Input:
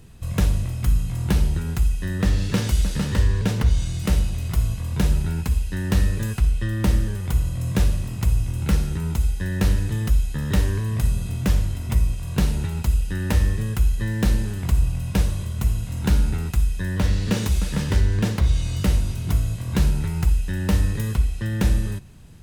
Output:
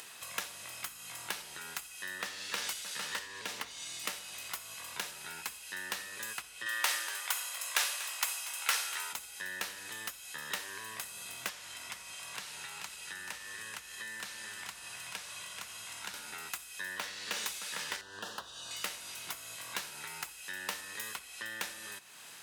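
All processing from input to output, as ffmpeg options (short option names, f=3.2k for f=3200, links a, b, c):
-filter_complex "[0:a]asettb=1/sr,asplit=3[a][b][c];[a]atrim=end=3.254[d];[b]atrim=start=3.25:end=4.1,asetpts=PTS-STARTPTS,afade=t=in:d=0.004:c=qsin,afade=t=out:st=0.846:d=0.004:c=qsin,equalizer=f=270:t=o:w=0.56:g=6,bandreject=f=1.5k:w=13[e];[c]atrim=start=4.096[f];[d][e]acrossfade=d=0.004:c1=hsin:c2=qsin[g];[g][f]acrossfade=d=0.004:c1=qsin:c2=hsin,asettb=1/sr,asplit=3[h][i][j];[h]atrim=end=6.664[k];[i]atrim=start=6.66:end=9.13,asetpts=PTS-STARTPTS,afade=t=in:d=0.004:c=qsin,afade=t=out:st=2.466:d=0.004:c=qsin,highpass=760,acontrast=62,aecho=1:1:240:0.168,atrim=end_sample=108927[l];[j]atrim=start=9.126[m];[k][l]acrossfade=d=0.004:c1=hsin:c2=qsin[n];[n][m]acrossfade=d=0.004:c1=qsin:c2=hsin,asettb=1/sr,asplit=3[o][p][q];[o]atrim=end=11.494[r];[p]atrim=start=11.49:end=16.14,asetpts=PTS-STARTPTS,afade=t=in:d=0.004:c=qsin,afade=t=out:st=4.646:d=0.004:c=qsin,acrossover=split=160|780|5400[s][t][u][v];[s]acompressor=threshold=-21dB:ratio=3[w];[t]acompressor=threshold=-42dB:ratio=3[x];[u]acompressor=threshold=-42dB:ratio=3[y];[v]acompressor=threshold=-46dB:ratio=3[z];[w][x][y][z]amix=inputs=4:normalize=0,lowpass=11k,aecho=1:1:434:0.422,atrim=end_sample=205065[aa];[q]atrim=start=16.136[ab];[r][aa]acrossfade=d=0.004:c1=hsin:c2=qsin[ac];[ac][ab]acrossfade=d=0.004:c1=qsin:c2=hsin,asettb=1/sr,asplit=3[ad][ae][af];[ad]atrim=end=18.014[ag];[ae]atrim=start=18.01:end=18.71,asetpts=PTS-STARTPTS,afade=t=in:d=0.004:c=qsin,afade=t=out:st=0.696:d=0.004:c=qsin,asuperstop=centerf=2200:order=4:qfactor=2,highshelf=f=4.1k:g=-8.5[ah];[af]atrim=start=18.706[ai];[ag][ah]acrossfade=d=0.004:c1=hsin:c2=qsin[aj];[aj][ai]acrossfade=d=0.004:c1=qsin:c2=hsin,acompressor=threshold=-21dB:ratio=3,highpass=1.1k,acompressor=mode=upward:threshold=-38dB:ratio=2.5,volume=-1dB"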